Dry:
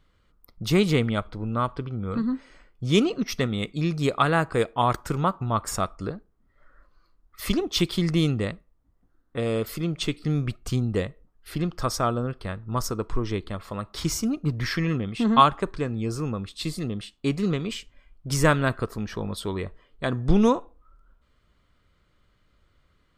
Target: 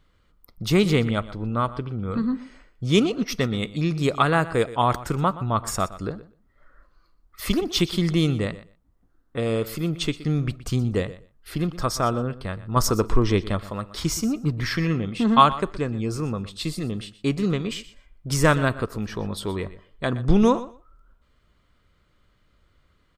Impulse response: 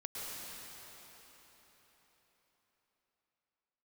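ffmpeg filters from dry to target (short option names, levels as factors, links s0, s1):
-filter_complex "[0:a]asettb=1/sr,asplit=3[s0][s1][s2];[s0]atrim=end=12.764[s3];[s1]atrim=start=12.76:end=13.6,asetpts=PTS-STARTPTS,afade=t=in:d=0.004:c=qsin,afade=t=out:st=0.836:d=0.004:c=qsin,acontrast=50[s4];[s2]atrim=start=13.596[s5];[s3][s4]acrossfade=d=0.004:c1=hsin:c2=qsin[s6];[s6][s5]acrossfade=d=0.004:c1=qsin:c2=hsin,asplit=2[s7][s8];[s8]aecho=0:1:122|244:0.15|0.0224[s9];[s7][s9]amix=inputs=2:normalize=0,volume=1.19"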